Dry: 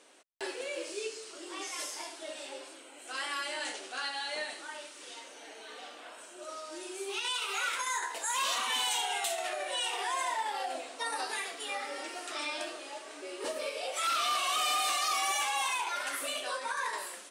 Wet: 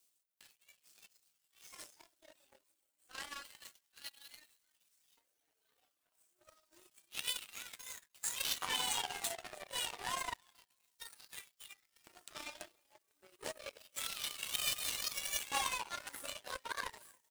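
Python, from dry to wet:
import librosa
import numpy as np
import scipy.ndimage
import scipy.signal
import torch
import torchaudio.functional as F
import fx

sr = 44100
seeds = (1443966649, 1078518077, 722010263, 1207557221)

y = x + 0.5 * 10.0 ** (-40.0 / 20.0) * np.diff(np.sign(x), prepend=np.sign(x[:1]))
y = fx.filter_lfo_highpass(y, sr, shape='square', hz=0.29, low_hz=260.0, high_hz=2600.0, q=0.95)
y = fx.dereverb_blind(y, sr, rt60_s=1.9)
y = fx.echo_feedback(y, sr, ms=305, feedback_pct=38, wet_db=-14.0)
y = fx.power_curve(y, sr, exponent=3.0)
y = F.gain(torch.from_numpy(y), 9.0).numpy()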